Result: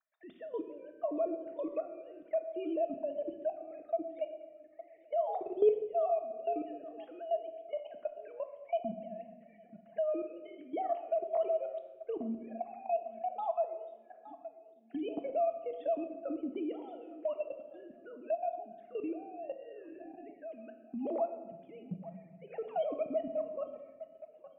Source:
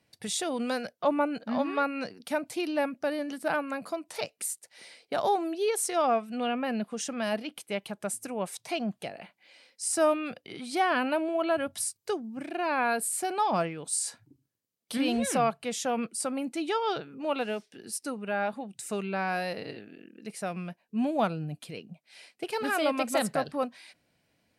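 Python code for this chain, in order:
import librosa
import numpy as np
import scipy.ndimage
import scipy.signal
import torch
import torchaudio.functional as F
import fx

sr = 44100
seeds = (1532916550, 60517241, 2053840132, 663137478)

y = fx.sine_speech(x, sr)
y = fx.comb_fb(y, sr, f0_hz=260.0, decay_s=1.1, harmonics='all', damping=0.0, mix_pct=50)
y = fx.env_phaser(y, sr, low_hz=530.0, high_hz=1600.0, full_db=-37.0)
y = fx.tilt_shelf(y, sr, db=6.0, hz=900.0)
y = fx.echo_feedback(y, sr, ms=853, feedback_pct=45, wet_db=-24.0)
y = fx.level_steps(y, sr, step_db=19)
y = fx.peak_eq(y, sr, hz=670.0, db=11.5, octaves=0.22)
y = fx.room_shoebox(y, sr, seeds[0], volume_m3=450.0, walls='mixed', distance_m=0.58)
y = fx.band_squash(y, sr, depth_pct=40)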